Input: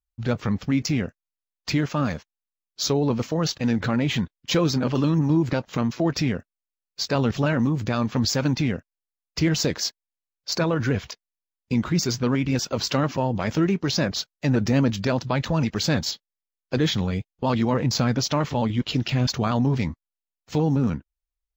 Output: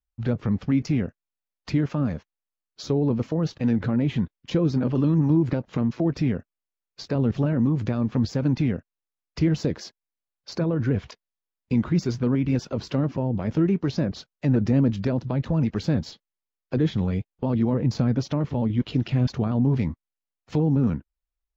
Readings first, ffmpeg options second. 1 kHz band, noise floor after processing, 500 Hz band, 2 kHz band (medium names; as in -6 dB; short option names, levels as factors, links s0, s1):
-8.5 dB, under -85 dBFS, -2.5 dB, -9.0 dB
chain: -filter_complex "[0:a]aemphasis=mode=reproduction:type=75fm,acrossover=split=500[s0][s1];[s1]acompressor=threshold=0.0141:ratio=6[s2];[s0][s2]amix=inputs=2:normalize=0"